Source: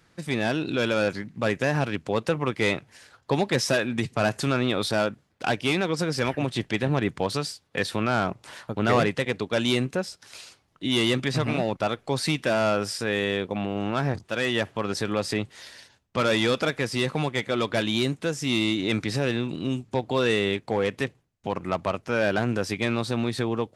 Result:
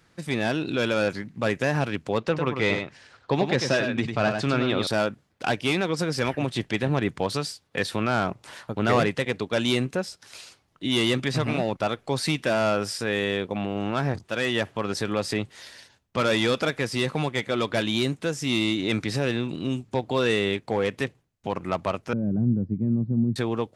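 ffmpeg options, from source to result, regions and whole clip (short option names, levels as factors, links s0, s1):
-filter_complex "[0:a]asettb=1/sr,asplit=3[s0][s1][s2];[s0]atrim=end=2.184[s3];[s1]atrim=start=2.18:end=4.87,asetpts=PTS-STARTPTS,afade=t=in:d=0.004:c=qsin,afade=t=out:st=2.686:d=0.004:c=qsin,lowpass=5200,aecho=1:1:99:0.473,atrim=end_sample=118629[s4];[s2]atrim=start=4.866[s5];[s3][s4]acrossfade=d=0.004:c1=hsin:c2=qsin[s6];[s6][s5]acrossfade=d=0.004:c1=qsin:c2=hsin,asettb=1/sr,asplit=3[s7][s8][s9];[s7]atrim=end=22.134[s10];[s8]atrim=start=22.13:end=23.36,asetpts=PTS-STARTPTS,afade=t=in:d=0.004:c=qsin,afade=t=out:st=1.226:d=0.004:c=qsin,lowpass=f=210:t=q:w=1.9,lowshelf=f=120:g=5.5[s11];[s9]atrim=start=23.356[s12];[s10][s11]acrossfade=d=0.004:c1=hsin:c2=qsin[s13];[s13][s12]acrossfade=d=0.004:c1=qsin:c2=hsin"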